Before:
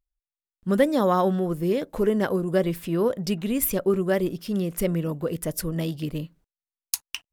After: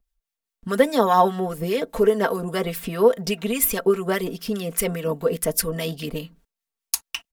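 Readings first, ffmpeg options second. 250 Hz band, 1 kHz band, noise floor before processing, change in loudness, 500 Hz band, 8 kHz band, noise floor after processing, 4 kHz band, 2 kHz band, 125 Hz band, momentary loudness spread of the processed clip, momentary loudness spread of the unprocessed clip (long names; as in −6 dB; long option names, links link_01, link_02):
−2.0 dB, +7.0 dB, below −85 dBFS, +2.5 dB, +3.0 dB, +6.0 dB, below −85 dBFS, +5.5 dB, +5.0 dB, −2.5 dB, 10 LU, 9 LU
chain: -filter_complex "[0:a]aecho=1:1:4.4:0.77,acrossover=split=370|2600[link_01][link_02][link_03];[link_01]acompressor=threshold=-34dB:ratio=10[link_04];[link_04][link_02][link_03]amix=inputs=3:normalize=0,acrossover=split=1200[link_05][link_06];[link_05]aeval=exprs='val(0)*(1-0.5/2+0.5/2*cos(2*PI*4.9*n/s))':channel_layout=same[link_07];[link_06]aeval=exprs='val(0)*(1-0.5/2-0.5/2*cos(2*PI*4.9*n/s))':channel_layout=same[link_08];[link_07][link_08]amix=inputs=2:normalize=0,volume=7dB"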